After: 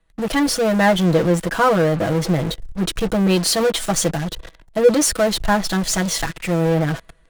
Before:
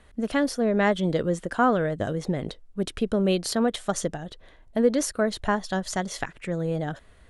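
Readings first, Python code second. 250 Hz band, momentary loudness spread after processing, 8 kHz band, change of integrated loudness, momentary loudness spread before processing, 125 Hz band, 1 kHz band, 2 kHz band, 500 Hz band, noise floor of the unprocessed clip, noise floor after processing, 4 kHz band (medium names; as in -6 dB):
+6.5 dB, 9 LU, +12.0 dB, +7.5 dB, 10 LU, +9.5 dB, +6.5 dB, +7.5 dB, +7.0 dB, -53 dBFS, -53 dBFS, +11.5 dB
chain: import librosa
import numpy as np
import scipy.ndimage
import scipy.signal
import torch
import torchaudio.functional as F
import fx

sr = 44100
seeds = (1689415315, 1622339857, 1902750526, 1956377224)

p1 = x + 0.96 * np.pad(x, (int(6.1 * sr / 1000.0), 0))[:len(x)]
p2 = fx.fuzz(p1, sr, gain_db=47.0, gate_db=-42.0)
p3 = p1 + (p2 * librosa.db_to_amplitude(-10.0))
y = fx.band_widen(p3, sr, depth_pct=40)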